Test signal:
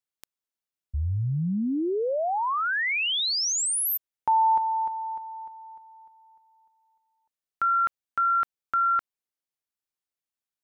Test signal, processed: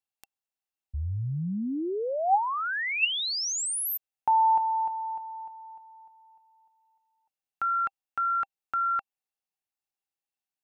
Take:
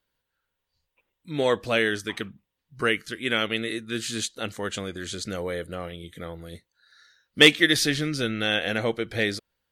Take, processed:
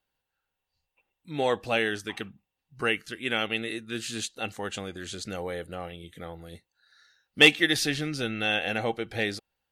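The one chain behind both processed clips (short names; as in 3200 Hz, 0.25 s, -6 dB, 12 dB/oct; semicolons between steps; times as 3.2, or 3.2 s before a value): small resonant body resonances 790/2700 Hz, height 12 dB, ringing for 40 ms; gain -4 dB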